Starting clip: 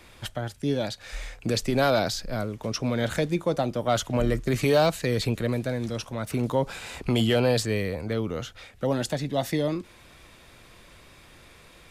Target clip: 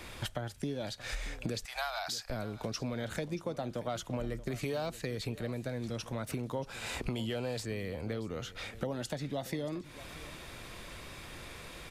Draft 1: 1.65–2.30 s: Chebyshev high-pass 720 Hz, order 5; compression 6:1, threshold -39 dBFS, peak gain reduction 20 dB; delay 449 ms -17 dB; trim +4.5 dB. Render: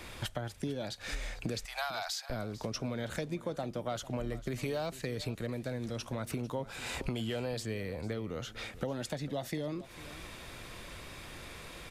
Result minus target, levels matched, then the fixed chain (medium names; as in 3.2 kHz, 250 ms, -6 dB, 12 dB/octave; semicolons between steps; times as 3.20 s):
echo 181 ms early
1.65–2.30 s: Chebyshev high-pass 720 Hz, order 5; compression 6:1, threshold -39 dBFS, peak gain reduction 20 dB; delay 630 ms -17 dB; trim +4.5 dB